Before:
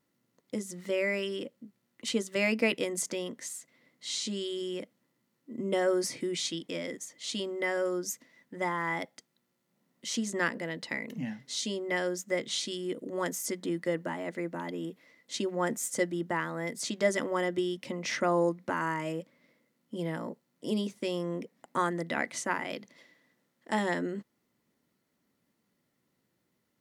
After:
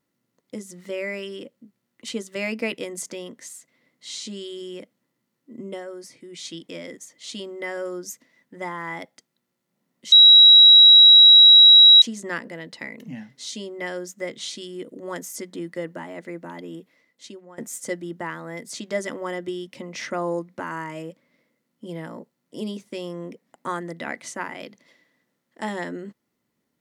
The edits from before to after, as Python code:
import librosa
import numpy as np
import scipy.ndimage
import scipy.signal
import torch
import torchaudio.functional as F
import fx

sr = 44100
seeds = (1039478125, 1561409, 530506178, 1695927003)

y = fx.edit(x, sr, fx.fade_down_up(start_s=5.57, length_s=0.99, db=-10.0, fade_s=0.28),
    fx.insert_tone(at_s=10.12, length_s=1.9, hz=3870.0, db=-6.5),
    fx.fade_out_to(start_s=14.85, length_s=0.83, floor_db=-22.0), tone=tone)